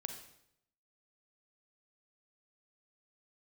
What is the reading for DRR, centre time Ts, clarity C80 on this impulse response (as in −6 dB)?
5.5 dB, 21 ms, 9.5 dB